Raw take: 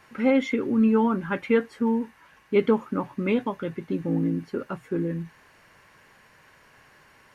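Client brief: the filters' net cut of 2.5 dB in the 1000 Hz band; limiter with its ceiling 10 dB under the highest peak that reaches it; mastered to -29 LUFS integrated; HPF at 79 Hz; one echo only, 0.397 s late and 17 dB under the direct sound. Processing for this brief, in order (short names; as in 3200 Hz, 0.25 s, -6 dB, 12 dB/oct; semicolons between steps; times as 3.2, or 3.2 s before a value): HPF 79 Hz; bell 1000 Hz -3 dB; limiter -19 dBFS; echo 0.397 s -17 dB; gain +0.5 dB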